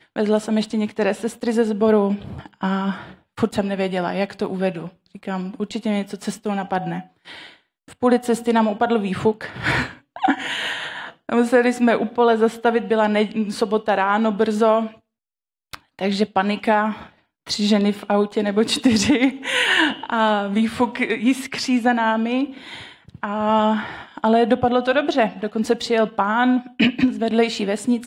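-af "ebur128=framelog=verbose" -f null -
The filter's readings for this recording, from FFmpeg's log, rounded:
Integrated loudness:
  I:         -20.3 LUFS
  Threshold: -30.8 LUFS
Loudness range:
  LRA:         6.1 LU
  Threshold: -40.9 LUFS
  LRA low:   -24.9 LUFS
  LRA high:  -18.8 LUFS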